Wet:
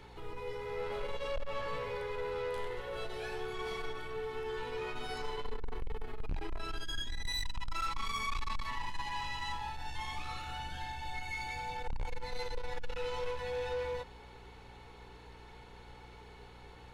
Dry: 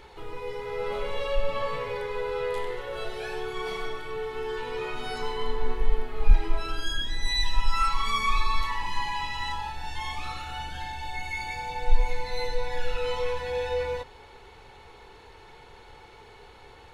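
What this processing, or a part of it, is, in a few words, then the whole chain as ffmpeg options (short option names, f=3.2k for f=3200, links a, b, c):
valve amplifier with mains hum: -af "aeval=exprs='(tanh(22.4*val(0)+0.2)-tanh(0.2))/22.4':c=same,aeval=exprs='val(0)+0.00282*(sin(2*PI*60*n/s)+sin(2*PI*2*60*n/s)/2+sin(2*PI*3*60*n/s)/3+sin(2*PI*4*60*n/s)/4+sin(2*PI*5*60*n/s)/5)':c=same,volume=-4.5dB"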